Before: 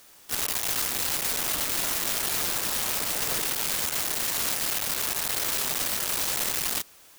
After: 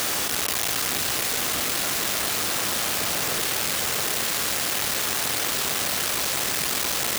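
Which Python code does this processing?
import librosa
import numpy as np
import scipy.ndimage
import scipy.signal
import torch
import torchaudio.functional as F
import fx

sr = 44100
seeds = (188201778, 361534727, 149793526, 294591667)

p1 = scipy.signal.sosfilt(scipy.signal.butter(2, 60.0, 'highpass', fs=sr, output='sos'), x)
p2 = fx.high_shelf(p1, sr, hz=7800.0, db=-5.5)
p3 = fx.notch(p2, sr, hz=930.0, q=18.0)
p4 = p3 + fx.echo_single(p3, sr, ms=672, db=-4.5, dry=0)
p5 = fx.env_flatten(p4, sr, amount_pct=100)
y = F.gain(torch.from_numpy(p5), 2.5).numpy()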